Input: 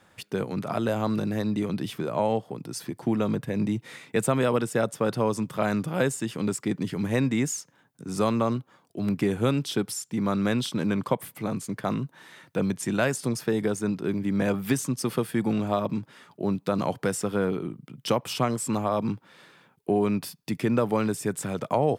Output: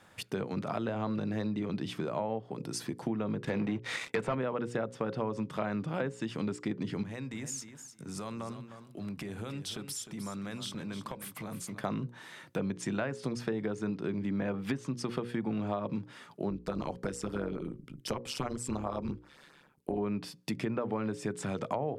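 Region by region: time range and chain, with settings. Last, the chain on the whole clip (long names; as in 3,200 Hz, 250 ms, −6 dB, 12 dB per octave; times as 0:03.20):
0:03.44–0:04.35: low-shelf EQ 350 Hz −11 dB + leveller curve on the samples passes 3
0:07.03–0:11.81: downward compressor 4 to 1, threshold −35 dBFS + parametric band 360 Hz −4 dB 2.1 octaves + repeating echo 306 ms, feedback 15%, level −11 dB
0:16.50–0:19.98: amplitude modulation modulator 140 Hz, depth 55% + auto-filter notch sine 7.7 Hz 570–3,600 Hz
whole clip: treble cut that deepens with the level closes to 2,200 Hz, closed at −19.5 dBFS; mains-hum notches 60/120/180/240/300/360/420/480/540 Hz; downward compressor 3 to 1, threshold −32 dBFS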